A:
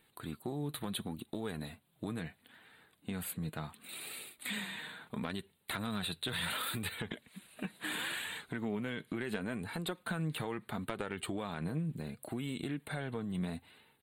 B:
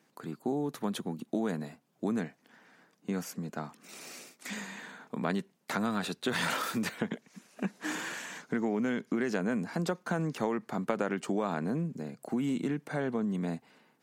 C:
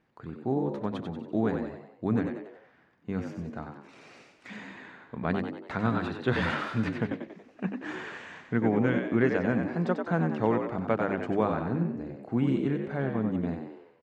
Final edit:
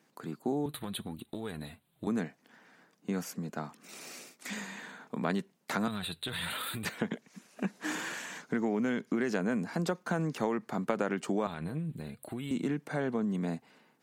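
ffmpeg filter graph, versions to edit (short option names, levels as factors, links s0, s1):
-filter_complex "[0:a]asplit=3[s0][s1][s2];[1:a]asplit=4[s3][s4][s5][s6];[s3]atrim=end=0.662[s7];[s0]atrim=start=0.658:end=2.072[s8];[s4]atrim=start=2.068:end=5.882[s9];[s1]atrim=start=5.878:end=6.852[s10];[s5]atrim=start=6.848:end=11.472[s11];[s2]atrim=start=11.468:end=12.512[s12];[s6]atrim=start=12.508[s13];[s7][s8]acrossfade=d=0.004:c1=hsin:c2=hsin[s14];[s14][s9]acrossfade=d=0.004:c1=hsin:c2=hsin[s15];[s15][s10]acrossfade=d=0.004:c1=hsin:c2=hsin[s16];[s16][s11]acrossfade=d=0.004:c1=hsin:c2=hsin[s17];[s17][s12]acrossfade=d=0.004:c1=hsin:c2=hsin[s18];[s18][s13]acrossfade=d=0.004:c1=hsin:c2=hsin"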